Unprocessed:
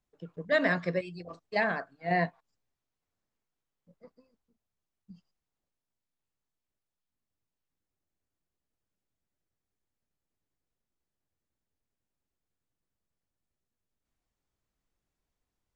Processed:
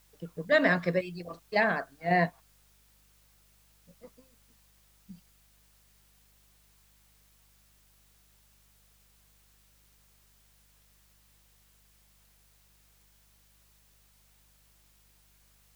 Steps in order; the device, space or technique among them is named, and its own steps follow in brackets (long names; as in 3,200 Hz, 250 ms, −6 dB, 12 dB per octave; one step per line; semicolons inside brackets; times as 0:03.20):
video cassette with head-switching buzz (hum with harmonics 50 Hz, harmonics 4, −70 dBFS −7 dB per octave; white noise bed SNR 29 dB)
level +2.5 dB